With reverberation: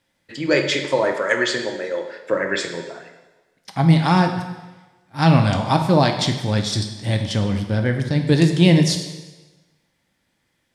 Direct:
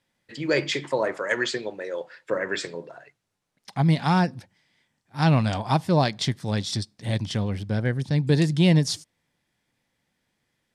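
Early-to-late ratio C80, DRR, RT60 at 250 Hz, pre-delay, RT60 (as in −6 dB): 9.0 dB, 4.5 dB, 1.1 s, 3 ms, 1.2 s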